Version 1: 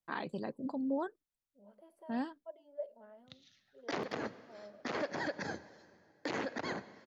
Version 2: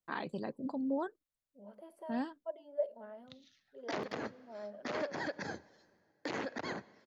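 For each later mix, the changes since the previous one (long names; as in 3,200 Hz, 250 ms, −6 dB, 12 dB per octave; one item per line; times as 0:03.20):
second voice +7.0 dB
background: send −7.0 dB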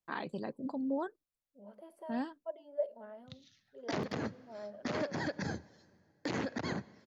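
background: add bass and treble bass +12 dB, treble +4 dB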